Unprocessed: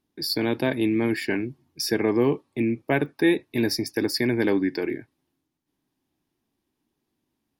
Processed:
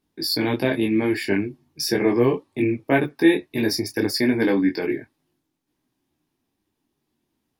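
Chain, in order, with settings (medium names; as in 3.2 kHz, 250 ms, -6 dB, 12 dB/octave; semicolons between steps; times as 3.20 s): detune thickener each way 13 cents; trim +6.5 dB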